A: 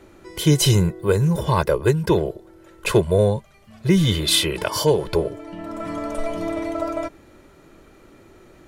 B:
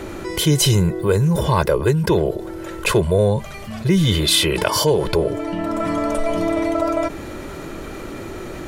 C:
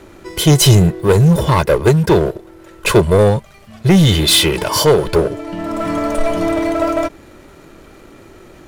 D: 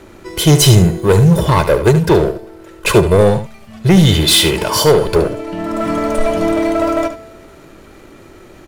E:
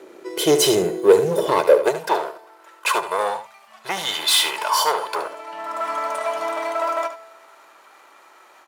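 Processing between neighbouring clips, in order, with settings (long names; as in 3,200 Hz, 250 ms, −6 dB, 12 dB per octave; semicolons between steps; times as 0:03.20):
envelope flattener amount 50%; level −1 dB
leveller curve on the samples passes 3; expander for the loud parts 2.5 to 1, over −19 dBFS
tuned comb filter 220 Hz, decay 1.3 s, mix 50%; single-tap delay 73 ms −10.5 dB; level +6.5 dB
high-pass filter sweep 410 Hz → 930 Hz, 0:01.59–0:02.28; mains-hum notches 60/120 Hz; every ending faded ahead of time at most 260 dB per second; level −6.5 dB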